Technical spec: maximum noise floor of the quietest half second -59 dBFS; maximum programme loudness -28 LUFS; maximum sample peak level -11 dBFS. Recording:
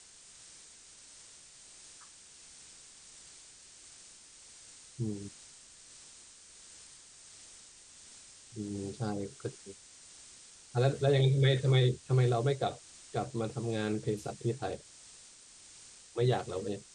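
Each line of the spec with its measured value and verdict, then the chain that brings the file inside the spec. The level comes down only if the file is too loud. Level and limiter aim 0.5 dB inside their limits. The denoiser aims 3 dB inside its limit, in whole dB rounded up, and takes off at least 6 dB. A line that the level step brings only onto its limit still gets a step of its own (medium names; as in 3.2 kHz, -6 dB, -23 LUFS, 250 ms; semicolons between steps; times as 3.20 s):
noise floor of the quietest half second -55 dBFS: fail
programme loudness -32.0 LUFS: pass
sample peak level -15.0 dBFS: pass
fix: noise reduction 7 dB, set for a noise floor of -55 dBFS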